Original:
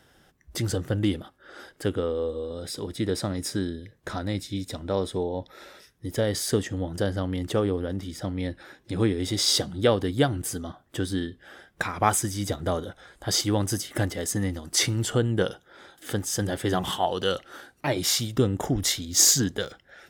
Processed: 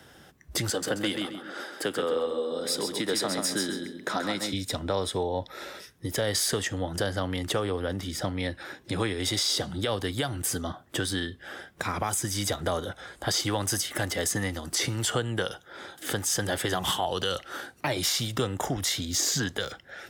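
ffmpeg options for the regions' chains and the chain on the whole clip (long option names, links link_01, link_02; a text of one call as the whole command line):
ffmpeg -i in.wav -filter_complex "[0:a]asettb=1/sr,asplit=3[link_01][link_02][link_03];[link_01]atrim=end=0.694[link_04];[link_02]atrim=start=0.69:end=4.53,asetpts=PTS-STARTPTS,afade=type=in:duration=0.004:curve=qsin,afade=type=out:start_time=3.836:duration=0.004:curve=qsin,highpass=frequency=180:width=0.5412,highpass=frequency=180:width=1.3066,aecho=1:1:133|266|399:0.501|0.135|0.0365,atrim=end_sample=169344[link_05];[link_03]atrim=start=4.526[link_06];[link_04][link_05]acrossfade=duration=0.004:curve1=hsin:curve2=qsin[link_07];[link_07][link_06]acrossfade=duration=0.004:curve1=qsin:curve2=hsin,highpass=61,acrossover=split=97|600|4200[link_08][link_09][link_10][link_11];[link_08]acompressor=threshold=-46dB:ratio=4[link_12];[link_09]acompressor=threshold=-40dB:ratio=4[link_13];[link_10]acompressor=threshold=-32dB:ratio=4[link_14];[link_11]acompressor=threshold=-31dB:ratio=4[link_15];[link_12][link_13][link_14][link_15]amix=inputs=4:normalize=0,alimiter=limit=-23dB:level=0:latency=1:release=76,volume=6.5dB" out.wav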